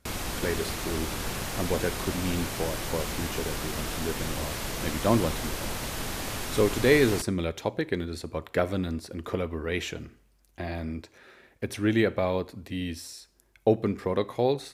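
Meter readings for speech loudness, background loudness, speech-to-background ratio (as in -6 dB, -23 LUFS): -29.5 LUFS, -33.0 LUFS, 3.5 dB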